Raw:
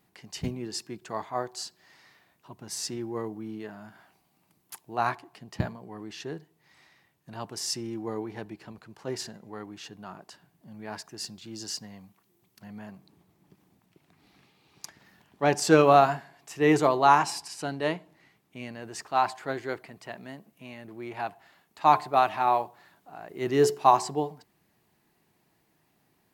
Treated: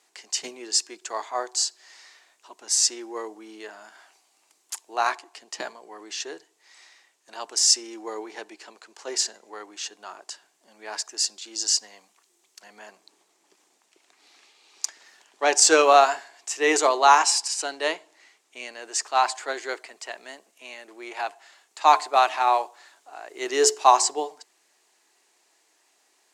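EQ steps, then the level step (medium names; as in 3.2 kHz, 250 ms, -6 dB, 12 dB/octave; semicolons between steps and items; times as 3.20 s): high-pass 350 Hz 24 dB/octave; resonant low-pass 7.3 kHz, resonance Q 2.3; tilt EQ +2 dB/octave; +3.5 dB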